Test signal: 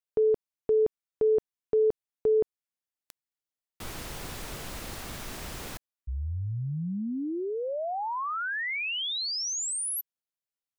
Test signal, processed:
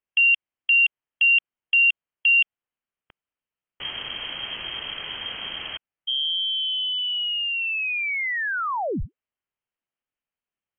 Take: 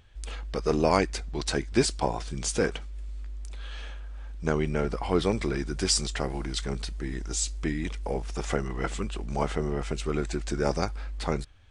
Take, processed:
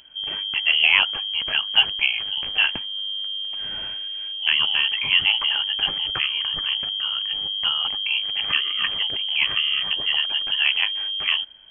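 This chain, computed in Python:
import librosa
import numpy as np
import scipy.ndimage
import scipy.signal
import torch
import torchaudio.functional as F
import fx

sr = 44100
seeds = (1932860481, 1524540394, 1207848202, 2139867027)

y = fx.freq_invert(x, sr, carrier_hz=3200)
y = y * librosa.db_to_amplitude(5.5)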